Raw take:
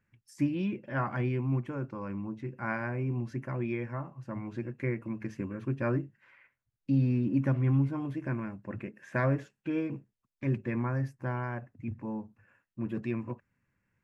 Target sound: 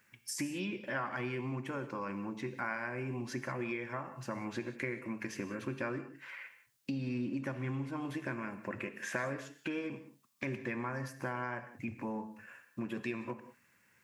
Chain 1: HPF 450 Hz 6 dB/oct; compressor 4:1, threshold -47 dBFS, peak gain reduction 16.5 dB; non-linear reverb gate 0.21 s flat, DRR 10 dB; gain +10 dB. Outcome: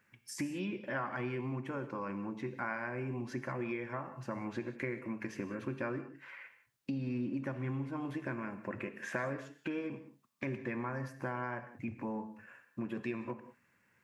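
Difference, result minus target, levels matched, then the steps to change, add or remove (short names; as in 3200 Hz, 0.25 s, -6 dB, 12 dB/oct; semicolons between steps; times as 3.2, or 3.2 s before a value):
4000 Hz band -5.0 dB
add after HPF: high shelf 2800 Hz +9.5 dB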